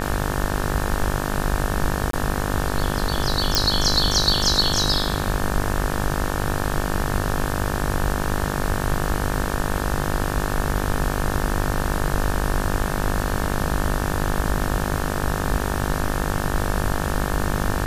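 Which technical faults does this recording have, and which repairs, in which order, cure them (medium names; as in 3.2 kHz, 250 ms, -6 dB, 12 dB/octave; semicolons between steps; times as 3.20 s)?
buzz 50 Hz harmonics 36 -26 dBFS
2.11–2.13 s: dropout 23 ms
3.55 s: pop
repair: de-click; de-hum 50 Hz, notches 36; interpolate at 2.11 s, 23 ms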